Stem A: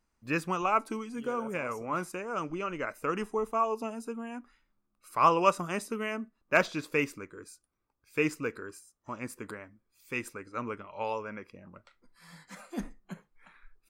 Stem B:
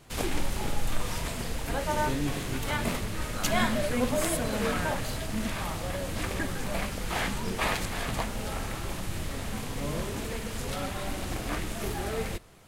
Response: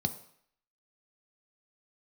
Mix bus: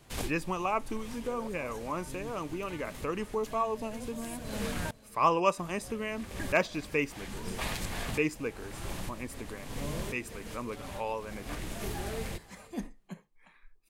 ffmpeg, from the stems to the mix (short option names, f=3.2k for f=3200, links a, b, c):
-filter_complex "[0:a]equalizer=f=1.4k:t=o:w=0.24:g=-12.5,volume=-1dB,asplit=2[a][b];[1:a]bandreject=f=1.3k:w=19,acrossover=split=250|3000[c][d][e];[d]acompressor=threshold=-33dB:ratio=6[f];[c][f][e]amix=inputs=3:normalize=0,volume=-3dB,asplit=3[g][h][i];[g]atrim=end=4.91,asetpts=PTS-STARTPTS,afade=t=out:st=4.906:d=0.004:c=hsin[j];[h]atrim=start=4.91:end=5.57,asetpts=PTS-STARTPTS,volume=0[k];[i]atrim=start=5.57,asetpts=PTS-STARTPTS,afade=t=in:d=0.004:c=hsin[l];[j][k][l]concat=n=3:v=0:a=1,asplit=2[m][n];[n]volume=-23dB[o];[b]apad=whole_len=558962[p];[m][p]sidechaincompress=threshold=-50dB:ratio=4:attack=32:release=209[q];[o]aecho=0:1:496:1[r];[a][q][r]amix=inputs=3:normalize=0"